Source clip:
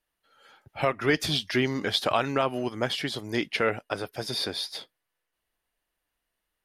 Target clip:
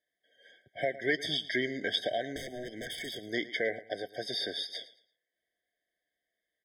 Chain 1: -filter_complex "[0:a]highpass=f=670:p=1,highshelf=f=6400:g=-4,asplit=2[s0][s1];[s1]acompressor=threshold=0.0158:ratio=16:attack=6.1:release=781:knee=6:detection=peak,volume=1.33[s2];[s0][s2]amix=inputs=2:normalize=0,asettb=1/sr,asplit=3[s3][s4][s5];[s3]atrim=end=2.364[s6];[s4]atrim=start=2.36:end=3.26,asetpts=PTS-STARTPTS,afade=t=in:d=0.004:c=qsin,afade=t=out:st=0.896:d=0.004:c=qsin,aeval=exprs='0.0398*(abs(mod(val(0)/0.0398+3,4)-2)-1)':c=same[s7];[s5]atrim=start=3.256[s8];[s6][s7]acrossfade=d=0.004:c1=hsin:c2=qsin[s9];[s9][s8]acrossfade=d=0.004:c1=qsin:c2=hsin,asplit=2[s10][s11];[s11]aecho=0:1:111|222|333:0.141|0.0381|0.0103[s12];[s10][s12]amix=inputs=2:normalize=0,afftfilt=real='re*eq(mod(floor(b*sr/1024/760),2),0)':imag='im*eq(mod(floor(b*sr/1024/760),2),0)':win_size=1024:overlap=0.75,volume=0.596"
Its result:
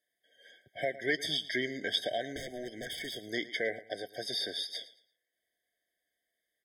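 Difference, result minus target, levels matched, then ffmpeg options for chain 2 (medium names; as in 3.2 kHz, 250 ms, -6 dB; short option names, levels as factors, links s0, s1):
compression: peak gain reduction +7.5 dB; 8 kHz band +3.0 dB
-filter_complex "[0:a]highpass=f=670:p=1,highshelf=f=6400:g=-15.5,asplit=2[s0][s1];[s1]acompressor=threshold=0.0376:ratio=16:attack=6.1:release=781:knee=6:detection=peak,volume=1.33[s2];[s0][s2]amix=inputs=2:normalize=0,asettb=1/sr,asplit=3[s3][s4][s5];[s3]atrim=end=2.364[s6];[s4]atrim=start=2.36:end=3.26,asetpts=PTS-STARTPTS,afade=t=in:d=0.004:c=qsin,afade=t=out:st=0.896:d=0.004:c=qsin,aeval=exprs='0.0398*(abs(mod(val(0)/0.0398+3,4)-2)-1)':c=same[s7];[s5]atrim=start=3.256[s8];[s6][s7]acrossfade=d=0.004:c1=hsin:c2=qsin[s9];[s9][s8]acrossfade=d=0.004:c1=qsin:c2=hsin,asplit=2[s10][s11];[s11]aecho=0:1:111|222|333:0.141|0.0381|0.0103[s12];[s10][s12]amix=inputs=2:normalize=0,afftfilt=real='re*eq(mod(floor(b*sr/1024/760),2),0)':imag='im*eq(mod(floor(b*sr/1024/760),2),0)':win_size=1024:overlap=0.75,volume=0.596"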